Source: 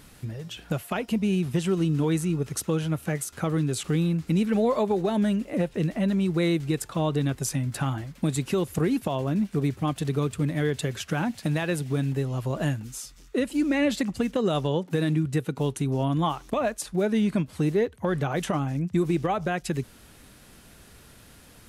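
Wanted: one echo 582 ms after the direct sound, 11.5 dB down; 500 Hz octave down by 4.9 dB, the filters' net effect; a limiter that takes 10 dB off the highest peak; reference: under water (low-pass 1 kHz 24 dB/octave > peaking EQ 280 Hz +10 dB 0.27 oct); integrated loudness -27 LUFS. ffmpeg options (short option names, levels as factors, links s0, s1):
-af "equalizer=f=500:t=o:g=-7.5,alimiter=level_in=1.12:limit=0.0631:level=0:latency=1,volume=0.891,lowpass=f=1000:w=0.5412,lowpass=f=1000:w=1.3066,equalizer=f=280:t=o:w=0.27:g=10,aecho=1:1:582:0.266,volume=1.68"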